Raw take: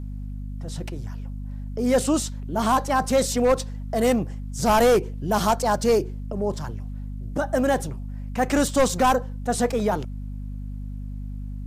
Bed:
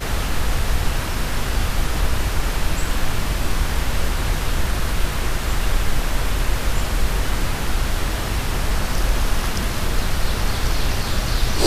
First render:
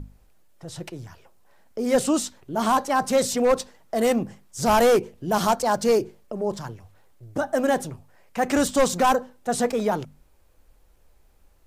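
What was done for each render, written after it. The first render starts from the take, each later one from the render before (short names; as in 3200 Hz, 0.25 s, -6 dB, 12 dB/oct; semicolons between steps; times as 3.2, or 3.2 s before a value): notches 50/100/150/200/250 Hz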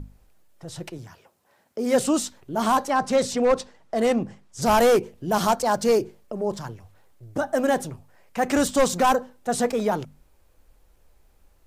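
0.98–2 HPF 110 Hz; 2.9–4.62 air absorption 52 m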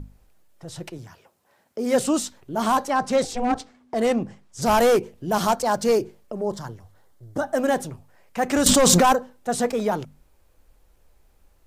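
3.24–3.94 ring modulator 250 Hz; 6.42–7.44 bell 2500 Hz -9.5 dB 0.3 oct; 8.66–9.13 fast leveller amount 100%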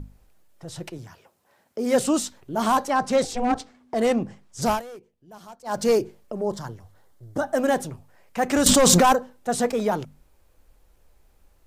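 4.66–5.8 dip -23 dB, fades 0.16 s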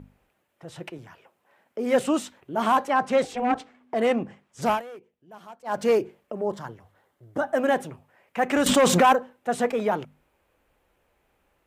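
HPF 230 Hz 6 dB/oct; resonant high shelf 3600 Hz -8 dB, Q 1.5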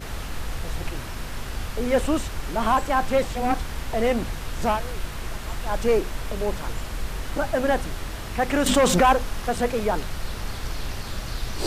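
add bed -10 dB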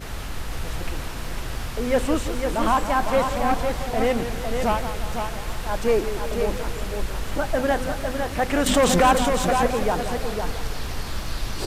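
echo 0.505 s -6 dB; warbling echo 0.172 s, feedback 60%, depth 132 cents, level -11 dB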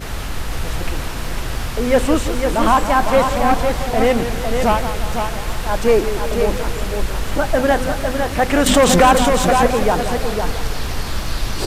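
gain +6.5 dB; limiter -1 dBFS, peak gain reduction 2 dB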